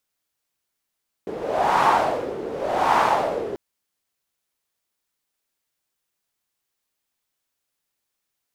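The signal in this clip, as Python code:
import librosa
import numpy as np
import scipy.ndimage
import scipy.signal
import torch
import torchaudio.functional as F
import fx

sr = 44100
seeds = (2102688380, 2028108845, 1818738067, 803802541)

y = fx.wind(sr, seeds[0], length_s=2.29, low_hz=410.0, high_hz=950.0, q=3.8, gusts=2, swing_db=13.0)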